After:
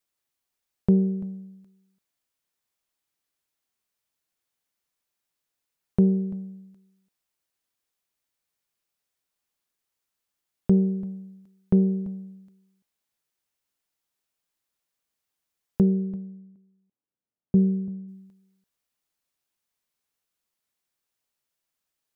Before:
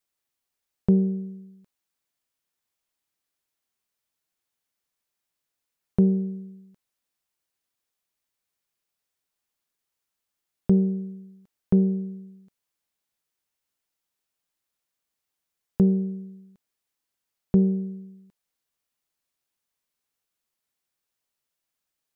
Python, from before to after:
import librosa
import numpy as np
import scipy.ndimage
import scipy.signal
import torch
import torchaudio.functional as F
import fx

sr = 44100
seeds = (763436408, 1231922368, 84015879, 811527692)

y = fx.bandpass_q(x, sr, hz=fx.line((15.81, 290.0), (18.07, 160.0)), q=0.65, at=(15.81, 18.07), fade=0.02)
y = y + 10.0 ** (-18.5 / 20.0) * np.pad(y, (int(339 * sr / 1000.0), 0))[:len(y)]